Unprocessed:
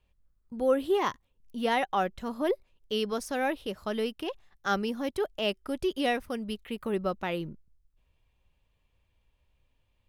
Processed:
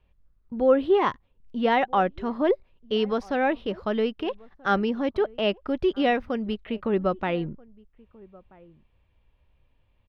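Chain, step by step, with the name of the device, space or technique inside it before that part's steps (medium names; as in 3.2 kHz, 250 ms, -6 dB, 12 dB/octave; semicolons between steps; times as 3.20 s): shout across a valley (distance through air 270 m; echo from a far wall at 220 m, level -24 dB); trim +6.5 dB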